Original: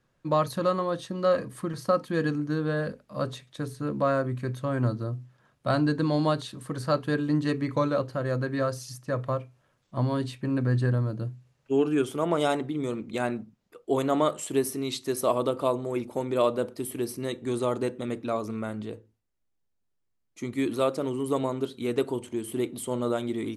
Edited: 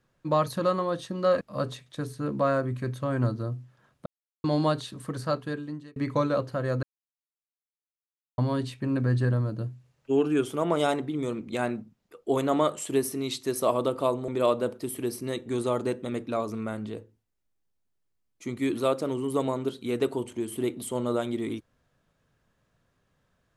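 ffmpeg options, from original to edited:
-filter_complex "[0:a]asplit=8[a][b][c][d][e][f][g][h];[a]atrim=end=1.412[i];[b]atrim=start=3.018:end=5.67,asetpts=PTS-STARTPTS,afade=t=out:st=2.648:d=0.004:c=hsin[j];[c]atrim=start=5.67:end=6.05,asetpts=PTS-STARTPTS,volume=0[k];[d]atrim=start=6.05:end=7.57,asetpts=PTS-STARTPTS,afade=t=in:d=0.004:c=hsin,afade=t=out:st=0.64:d=0.88[l];[e]atrim=start=7.57:end=8.44,asetpts=PTS-STARTPTS,afade=t=in:d=0.004:c=hsin,afade=t=out:st=0.866:d=0.004:c=hsin[m];[f]atrim=start=8.44:end=9.99,asetpts=PTS-STARTPTS,volume=0[n];[g]atrim=start=9.99:end=15.892,asetpts=PTS-STARTPTS,afade=t=in:d=0.004:c=hsin[o];[h]atrim=start=16.238[p];[j][k][l][m][n][o]concat=n=6:v=0:a=1[q];[i][q]acrossfade=d=0.004:c1=hsin:c2=hsin[r];[r][p]acrossfade=d=0.004:c1=hsin:c2=hsin"

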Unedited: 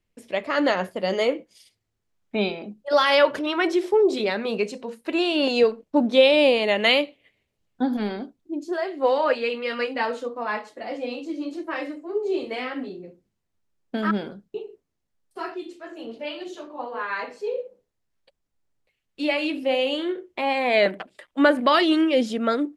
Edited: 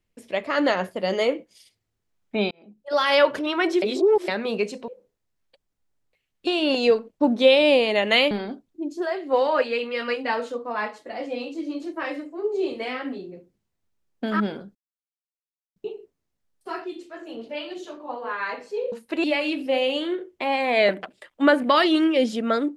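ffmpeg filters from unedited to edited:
-filter_complex "[0:a]asplit=10[a][b][c][d][e][f][g][h][i][j];[a]atrim=end=2.51,asetpts=PTS-STARTPTS,afade=t=out:st=2.506:d=0.004:c=hsin[k];[b]atrim=start=2.51:end=3.822,asetpts=PTS-STARTPTS,afade=t=in:d=0.67[l];[c]atrim=start=3.818:end=4.282,asetpts=PTS-STARTPTS,areverse[m];[d]atrim=start=4.278:end=4.882[n];[e]atrim=start=17.618:end=19.212[o];[f]atrim=start=5.198:end=7.042[p];[g]atrim=start=8.018:end=14.46,asetpts=PTS-STARTPTS,afade=t=out:st=6.438:d=0.004:c=hsin,apad=pad_dur=1.01[q];[h]atrim=start=14.46:end=17.622,asetpts=PTS-STARTPTS,afade=t=in:d=0.004:c=hsin[r];[i]atrim=start=4.878:end=5.202[s];[j]atrim=start=19.208[t];[k][l]concat=n=2:v=0:a=1[u];[u][m]acrossfade=d=0.004:c1=hsin:c2=hsin[v];[v][n]acrossfade=d=0.004:c1=hsin:c2=hsin[w];[w][o]acrossfade=d=0.004:c1=hsin:c2=hsin[x];[x][p]acrossfade=d=0.004:c1=hsin:c2=hsin[y];[q][r]concat=n=2:v=0:a=1[z];[y][z]acrossfade=d=0.004:c1=hsin:c2=hsin[aa];[aa][s]acrossfade=d=0.004:c1=hsin:c2=hsin[ab];[ab][t]acrossfade=d=0.004:c1=hsin:c2=hsin"

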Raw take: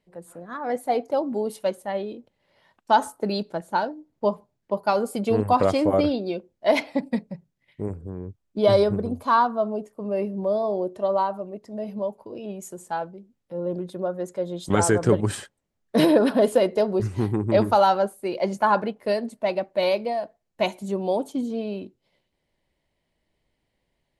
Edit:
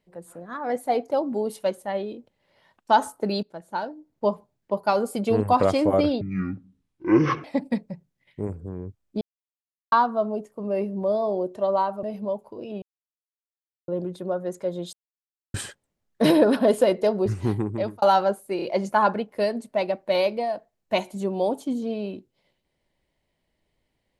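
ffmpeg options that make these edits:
-filter_complex "[0:a]asplit=14[a][b][c][d][e][f][g][h][i][j][k][l][m][n];[a]atrim=end=3.43,asetpts=PTS-STARTPTS,afade=t=out:st=3.426:d=0.004:c=hsin:silence=0.237137[o];[b]atrim=start=3.43:end=6.214,asetpts=PTS-STARTPTS,afade=t=in:d=0.87:silence=0.237137[p];[c]atrim=start=6.21:end=6.85,asetpts=PTS-STARTPTS,asetrate=22932,aresample=44100[q];[d]atrim=start=6.846:end=8.62,asetpts=PTS-STARTPTS,afade=t=out:st=1.77:d=0.004:c=hsin[r];[e]atrim=start=8.62:end=9.33,asetpts=PTS-STARTPTS,volume=0[s];[f]atrim=start=9.33:end=11.442,asetpts=PTS-STARTPTS,afade=t=in:d=0.004:c=hsin[t];[g]atrim=start=11.768:end=12.56,asetpts=PTS-STARTPTS,afade=t=out:st=0.788:d=0.004:c=hsin[u];[h]atrim=start=12.56:end=13.62,asetpts=PTS-STARTPTS,volume=0[v];[i]atrim=start=13.62:end=14.67,asetpts=PTS-STARTPTS,afade=t=in:d=0.004:c=hsin,afade=t=out:st=1.046:d=0.004:c=hsin[w];[j]atrim=start=14.67:end=15.28,asetpts=PTS-STARTPTS,volume=0[x];[k]atrim=start=15.28:end=17.76,asetpts=PTS-STARTPTS,afade=t=in:d=0.004:c=hsin,afade=t=out:st=1.98:d=0.5[y];[l]atrim=start=17.76:end=18.332,asetpts=PTS-STARTPTS,afade=t=in:d=0.004:c=hsin[z];[m]atrim=start=18.298:end=18.332[aa];[n]atrim=start=18.298[ab];[o][p]concat=n=2:v=0:a=1[ac];[ac][q]acrossfade=d=0.004:c1=hsin:c2=hsin[ad];[r][s][t]concat=n=3:v=0:a=1[ae];[ad][ae]acrossfade=d=0.004:c1=hsin:c2=hsin[af];[u][v][w][x][y][z]concat=n=6:v=0:a=1[ag];[af][ag]acrossfade=d=0.004:c1=hsin:c2=hsin[ah];[ah][aa]acrossfade=d=0.004:c1=hsin:c2=hsin[ai];[ai][ab]acrossfade=d=0.004:c1=hsin:c2=hsin"

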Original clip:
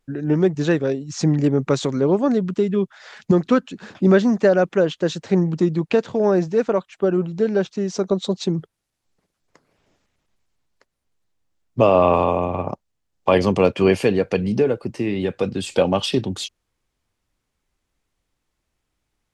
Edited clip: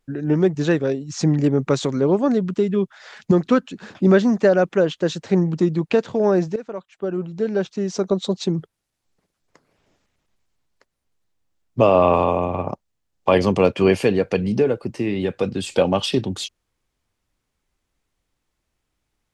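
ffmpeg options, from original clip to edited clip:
-filter_complex "[0:a]asplit=2[a][b];[a]atrim=end=6.56,asetpts=PTS-STARTPTS,afade=t=out:st=6.556:d=0.004:c=hsin:silence=0.16788[c];[b]atrim=start=6.56,asetpts=PTS-STARTPTS,afade=t=in:d=1.33:silence=0.16788[d];[c][d]concat=n=2:v=0:a=1"

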